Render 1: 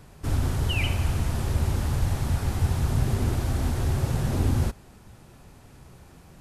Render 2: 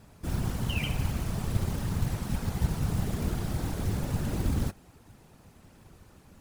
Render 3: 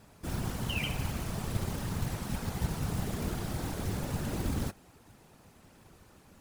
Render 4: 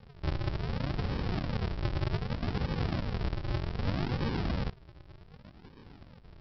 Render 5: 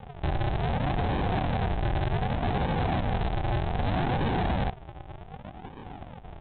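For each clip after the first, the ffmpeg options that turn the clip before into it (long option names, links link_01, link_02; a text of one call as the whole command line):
ffmpeg -i in.wav -af "acrusher=bits=5:mode=log:mix=0:aa=0.000001,afftfilt=real='hypot(re,im)*cos(2*PI*random(0))':imag='hypot(re,im)*sin(2*PI*random(1))':win_size=512:overlap=0.75,volume=1dB" out.wav
ffmpeg -i in.wav -af "lowshelf=frequency=190:gain=-6.5" out.wav
ffmpeg -i in.wav -af "alimiter=level_in=4dB:limit=-24dB:level=0:latency=1:release=116,volume=-4dB,aresample=11025,acrusher=samples=32:mix=1:aa=0.000001:lfo=1:lforange=32:lforate=0.65,aresample=44100,volume=6dB" out.wav
ffmpeg -i in.wav -af "equalizer=frequency=760:width_type=o:width=0.48:gain=13.5,aresample=8000,asoftclip=type=hard:threshold=-32.5dB,aresample=44100,volume=8.5dB" out.wav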